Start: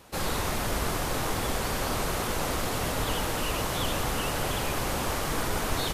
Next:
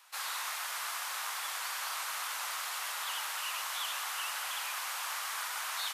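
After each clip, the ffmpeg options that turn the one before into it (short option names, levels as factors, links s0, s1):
-af "highpass=f=1000:w=0.5412,highpass=f=1000:w=1.3066,volume=0.668"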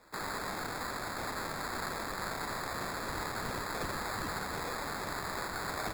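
-af "acrusher=samples=15:mix=1:aa=0.000001"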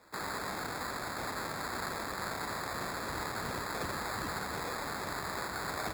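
-af "highpass=44"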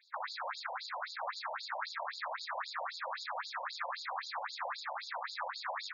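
-af "afftfilt=real='re*between(b*sr/1024,680*pow(5000/680,0.5+0.5*sin(2*PI*3.8*pts/sr))/1.41,680*pow(5000/680,0.5+0.5*sin(2*PI*3.8*pts/sr))*1.41)':imag='im*between(b*sr/1024,680*pow(5000/680,0.5+0.5*sin(2*PI*3.8*pts/sr))/1.41,680*pow(5000/680,0.5+0.5*sin(2*PI*3.8*pts/sr))*1.41)':win_size=1024:overlap=0.75,volume=1.68"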